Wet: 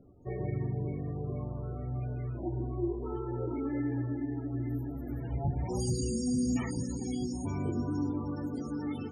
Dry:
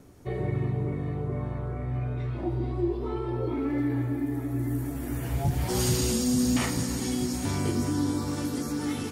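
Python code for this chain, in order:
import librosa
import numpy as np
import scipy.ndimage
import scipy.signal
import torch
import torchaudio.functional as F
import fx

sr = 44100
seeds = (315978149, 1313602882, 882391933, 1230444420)

y = fx.echo_wet_bandpass(x, sr, ms=110, feedback_pct=72, hz=560.0, wet_db=-22.0)
y = fx.spec_topn(y, sr, count=32)
y = y * librosa.db_to_amplitude(-5.0)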